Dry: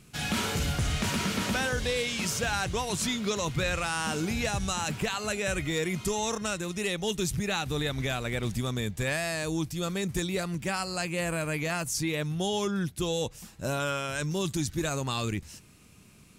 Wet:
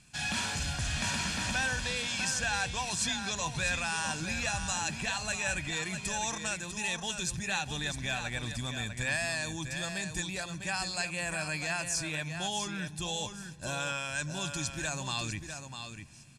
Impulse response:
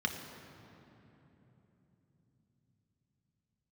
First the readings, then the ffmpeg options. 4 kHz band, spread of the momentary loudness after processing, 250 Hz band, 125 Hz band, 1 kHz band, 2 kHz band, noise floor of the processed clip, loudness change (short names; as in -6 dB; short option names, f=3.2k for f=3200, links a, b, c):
-1.0 dB, 6 LU, -8.0 dB, -6.5 dB, -3.0 dB, +0.5 dB, -45 dBFS, -2.5 dB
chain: -filter_complex "[0:a]lowpass=f=9.3k:w=0.5412,lowpass=f=9.3k:w=1.3066,tiltshelf=f=1.3k:g=-4.5,aecho=1:1:1.2:0.6,aecho=1:1:650:0.398,asplit=2[a][b];[1:a]atrim=start_sample=2205,asetrate=48510,aresample=44100[c];[b][c]afir=irnorm=-1:irlink=0,volume=-20.5dB[d];[a][d]amix=inputs=2:normalize=0,volume=-4.5dB"